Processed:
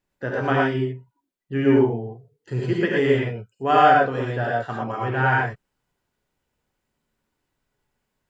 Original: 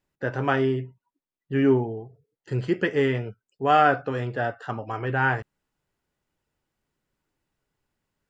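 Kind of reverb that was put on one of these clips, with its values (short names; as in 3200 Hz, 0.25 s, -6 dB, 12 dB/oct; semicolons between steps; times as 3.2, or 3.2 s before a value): non-linear reverb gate 0.14 s rising, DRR -2.5 dB; gain -1 dB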